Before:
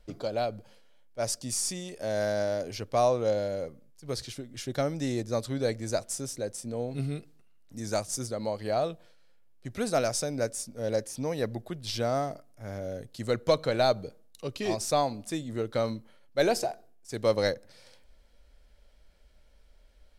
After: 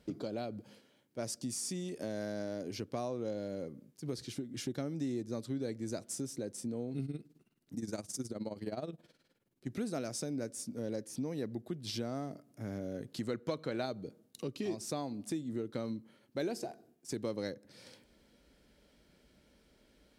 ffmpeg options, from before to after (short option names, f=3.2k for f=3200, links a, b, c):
-filter_complex "[0:a]asettb=1/sr,asplit=3[a][b][c];[a]atrim=end=7.054[d];[b]atrim=start=7.05:end=9.67,asetpts=PTS-STARTPTS,afade=t=in:d=0.004:c=qsin,afade=t=out:st=2.616:d=0.004:c=qsin,tremolo=f=19:d=0.78[e];[c]atrim=start=9.666[f];[d][e]acrossfade=d=0.004:c1=hsin:c2=qsin[g];[g][f]acrossfade=d=0.004:c1=qsin:c2=hsin,asettb=1/sr,asplit=3[h][i][j];[h]atrim=end=12.944[k];[i]atrim=start=12.94:end=13.86,asetpts=PTS-STARTPTS,afade=t=in:d=0.004:c=qsin,afade=t=out:st=0.916:d=0.004:c=qsin,equalizer=f=1.4k:t=o:w=2.8:g=5.5[l];[j]atrim=start=13.856[m];[k][l]acrossfade=d=0.004:c1=hsin:c2=qsin[n];[n][m]acrossfade=d=0.004:c1=qsin:c2=hsin,highpass=150,lowshelf=f=440:t=q:w=1.5:g=8,acompressor=threshold=-40dB:ratio=3,volume=1dB"